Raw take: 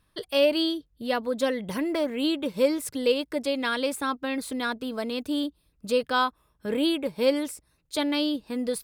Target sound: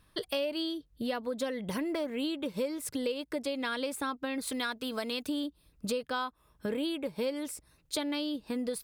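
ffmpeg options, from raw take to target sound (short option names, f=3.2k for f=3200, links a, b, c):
-filter_complex "[0:a]asettb=1/sr,asplit=3[a][b][c];[a]atrim=end=4.474[d];[b]atrim=start=4.47:end=5.29,asetpts=PTS-STARTPTS,afade=t=in:d=0.004:c=qsin,afade=t=out:st=0.816:d=0.004:c=qsin,tiltshelf=f=970:g=-4.5[e];[c]atrim=start=5.286[f];[d][e]acrossfade=d=0.004:c1=hsin:c2=qsin[g];[g][f]acrossfade=d=0.004:c1=qsin:c2=hsin,acompressor=threshold=-35dB:ratio=5,volume=3.5dB"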